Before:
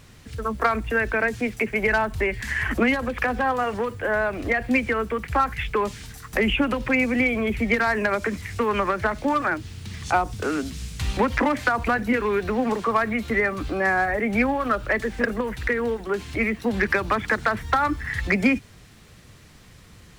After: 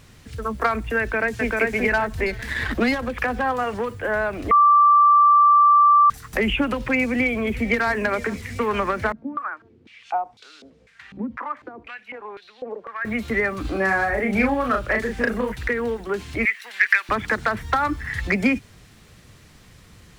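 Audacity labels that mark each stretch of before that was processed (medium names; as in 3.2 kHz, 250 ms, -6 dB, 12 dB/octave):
1.000000	1.500000	echo throw 390 ms, feedback 30%, level -1 dB
2.260000	3.090000	sliding maximum over 5 samples
4.510000	6.100000	bleep 1.17 kHz -10.5 dBFS
6.990000	7.880000	echo throw 450 ms, feedback 75%, level -17.5 dB
9.120000	13.050000	step-sequenced band-pass 4 Hz 230–3900 Hz
13.610000	15.520000	doubling 36 ms -4 dB
16.450000	17.090000	resonant high-pass 1.9 kHz, resonance Q 2.6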